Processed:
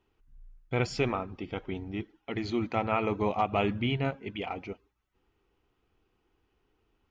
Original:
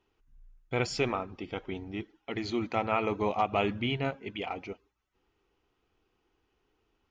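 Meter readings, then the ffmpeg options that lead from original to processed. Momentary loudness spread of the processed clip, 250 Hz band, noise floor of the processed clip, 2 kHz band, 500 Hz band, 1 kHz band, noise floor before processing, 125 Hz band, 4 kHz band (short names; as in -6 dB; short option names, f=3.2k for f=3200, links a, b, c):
10 LU, +2.0 dB, -76 dBFS, -0.5 dB, +0.5 dB, 0.0 dB, -77 dBFS, +3.5 dB, -1.5 dB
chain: -af "bass=f=250:g=4,treble=f=4k:g=-4"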